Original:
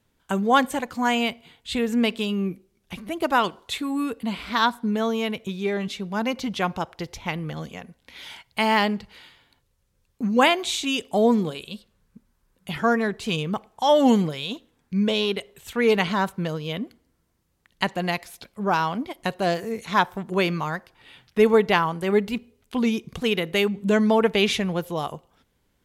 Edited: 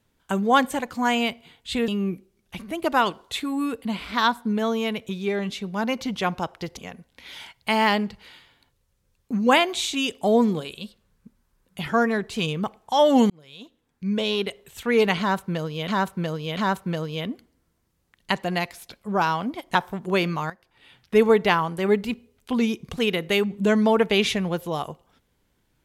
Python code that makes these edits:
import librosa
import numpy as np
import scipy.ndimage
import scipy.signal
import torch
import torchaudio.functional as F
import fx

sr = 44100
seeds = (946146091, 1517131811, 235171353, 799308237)

y = fx.edit(x, sr, fx.cut(start_s=1.88, length_s=0.38),
    fx.cut(start_s=7.15, length_s=0.52),
    fx.fade_in_span(start_s=14.2, length_s=1.16),
    fx.repeat(start_s=16.09, length_s=0.69, count=3),
    fx.cut(start_s=19.27, length_s=0.72),
    fx.fade_in_from(start_s=20.74, length_s=0.69, floor_db=-14.5), tone=tone)